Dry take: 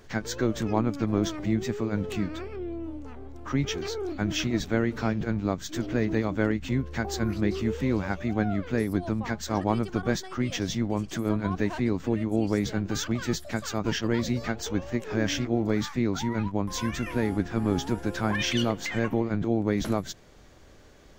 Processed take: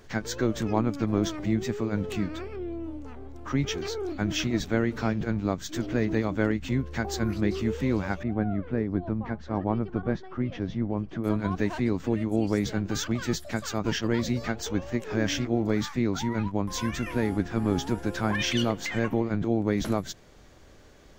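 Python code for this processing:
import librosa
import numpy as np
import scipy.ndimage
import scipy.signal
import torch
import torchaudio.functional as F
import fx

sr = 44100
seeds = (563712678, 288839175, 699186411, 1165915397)

y = fx.spacing_loss(x, sr, db_at_10k=39, at=(8.23, 11.24))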